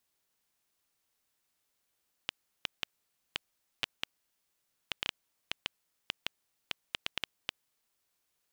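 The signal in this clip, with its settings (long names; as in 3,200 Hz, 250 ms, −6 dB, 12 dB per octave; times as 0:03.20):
Geiger counter clicks 3.5 per second −13 dBFS 5.87 s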